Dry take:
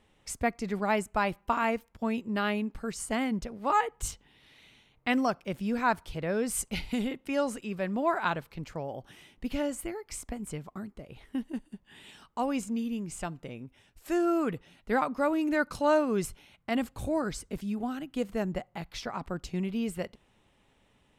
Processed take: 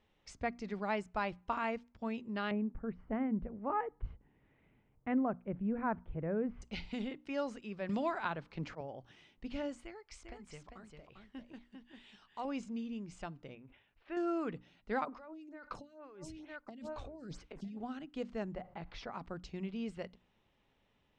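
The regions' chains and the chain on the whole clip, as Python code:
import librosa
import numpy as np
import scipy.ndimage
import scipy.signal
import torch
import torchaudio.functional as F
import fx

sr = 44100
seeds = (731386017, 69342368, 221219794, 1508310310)

y = fx.chain(x, sr, fx.lowpass(hz=2100.0, slope=24),
    fx.tilt_shelf(db=6.0, hz=680.0), at=(2.51, 6.62))
y = fx.chain(y, sr, fx.auto_swell(attack_ms=160.0),
    fx.band_squash(depth_pct=100), at=(7.89, 8.81))
y = fx.chain(y, sr, fx.peak_eq(hz=200.0, db=-8.0, octaves=2.8),
    fx.echo_single(ms=398, db=-5.5), at=(9.84, 12.45))
y = fx.chain(y, sr, fx.lowpass(hz=3100.0, slope=24),
    fx.low_shelf(hz=460.0, db=-7.5),
    fx.sustainer(db_per_s=90.0), at=(13.55, 14.17))
y = fx.chain(y, sr, fx.echo_single(ms=957, db=-18.0),
    fx.over_compress(threshold_db=-37.0, ratio=-1.0),
    fx.stagger_phaser(hz=2.2), at=(15.05, 17.77))
y = fx.chain(y, sr, fx.lowpass(hz=1300.0, slope=6),
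    fx.peak_eq(hz=160.0, db=-3.5, octaves=2.3),
    fx.env_flatten(amount_pct=50), at=(18.55, 19.12))
y = scipy.signal.sosfilt(scipy.signal.butter(4, 5900.0, 'lowpass', fs=sr, output='sos'), y)
y = fx.hum_notches(y, sr, base_hz=60, count=5)
y = F.gain(torch.from_numpy(y), -8.0).numpy()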